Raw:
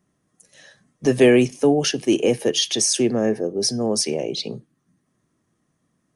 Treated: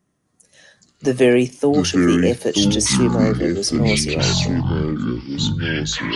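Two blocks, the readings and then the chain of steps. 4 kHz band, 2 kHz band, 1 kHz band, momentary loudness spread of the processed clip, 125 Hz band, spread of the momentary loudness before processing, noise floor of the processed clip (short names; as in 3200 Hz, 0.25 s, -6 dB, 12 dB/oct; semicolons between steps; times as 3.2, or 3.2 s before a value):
+3.0 dB, +6.0 dB, +4.5 dB, 7 LU, +11.0 dB, 11 LU, -68 dBFS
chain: echoes that change speed 0.254 s, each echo -6 st, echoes 3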